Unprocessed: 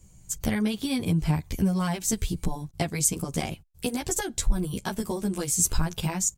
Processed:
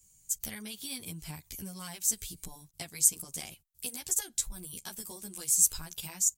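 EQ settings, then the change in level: pre-emphasis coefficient 0.9; 0.0 dB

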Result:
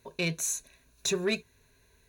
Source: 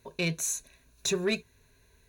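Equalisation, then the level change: low shelf 160 Hz -3 dB; 0.0 dB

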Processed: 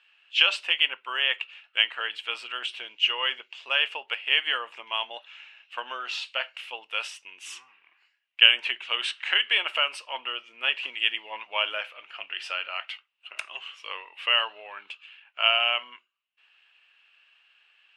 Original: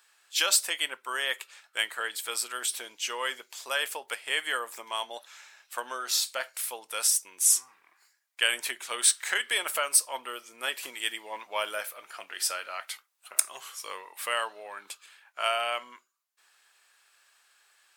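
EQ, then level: dynamic EQ 890 Hz, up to +5 dB, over -44 dBFS, Q 0.8; synth low-pass 2800 Hz, resonance Q 9.6; -5.0 dB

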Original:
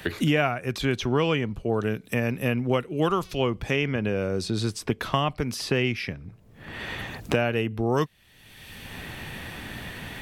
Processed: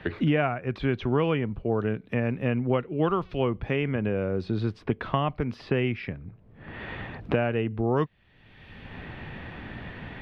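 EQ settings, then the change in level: air absorption 350 m; high shelf 5500 Hz -7 dB; 0.0 dB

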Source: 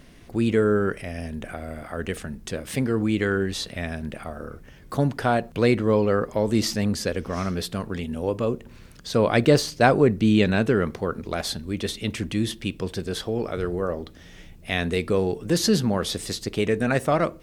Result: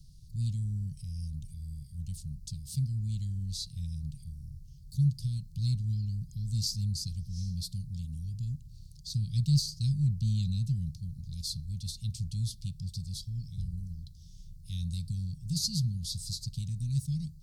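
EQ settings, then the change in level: Chebyshev band-stop 150–4400 Hz, order 4; high shelf 5300 Hz -8.5 dB; 0.0 dB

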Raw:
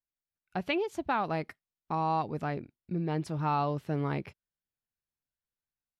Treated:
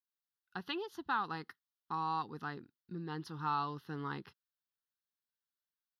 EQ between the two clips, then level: HPF 530 Hz 6 dB/oct; fixed phaser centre 2300 Hz, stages 6; 0.0 dB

